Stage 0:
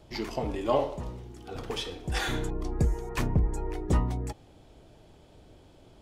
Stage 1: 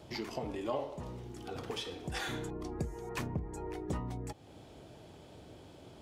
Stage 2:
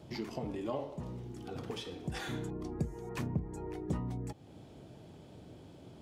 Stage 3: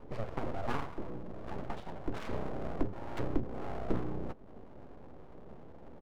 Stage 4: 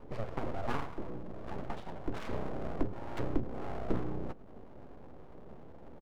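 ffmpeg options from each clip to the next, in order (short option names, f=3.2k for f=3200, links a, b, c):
-af "highpass=84,acompressor=threshold=-46dB:ratio=2,volume=3dB"
-af "equalizer=f=170:t=o:w=2.1:g=8,volume=-4dB"
-filter_complex "[0:a]adynamicsmooth=sensitivity=3.5:basefreq=770,asplit=2[a][b];[b]adelay=13,volume=-13dB[c];[a][c]amix=inputs=2:normalize=0,aeval=exprs='abs(val(0))':c=same,volume=5dB"
-af "aecho=1:1:105:0.0794"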